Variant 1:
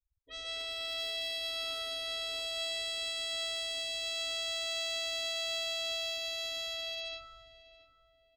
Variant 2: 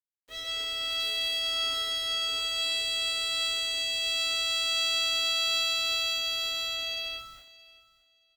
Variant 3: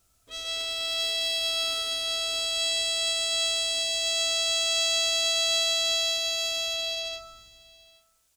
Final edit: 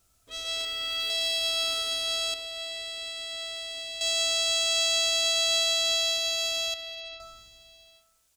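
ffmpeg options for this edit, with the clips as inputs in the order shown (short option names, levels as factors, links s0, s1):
-filter_complex "[0:a]asplit=2[s0][s1];[2:a]asplit=4[s2][s3][s4][s5];[s2]atrim=end=0.652[s6];[1:a]atrim=start=0.648:end=1.102[s7];[s3]atrim=start=1.098:end=2.342[s8];[s0]atrim=start=2.338:end=4.012[s9];[s4]atrim=start=4.008:end=6.742[s10];[s1]atrim=start=6.738:end=7.202[s11];[s5]atrim=start=7.198[s12];[s6][s7]acrossfade=d=0.004:c1=hsin:c2=hsin[s13];[s13][s8]acrossfade=d=0.004:c1=hsin:c2=hsin[s14];[s14][s9]acrossfade=d=0.004:c1=hsin:c2=hsin[s15];[s15][s10]acrossfade=d=0.004:c1=hsin:c2=hsin[s16];[s16][s11]acrossfade=d=0.004:c1=hsin:c2=hsin[s17];[s17][s12]acrossfade=d=0.004:c1=hsin:c2=hsin"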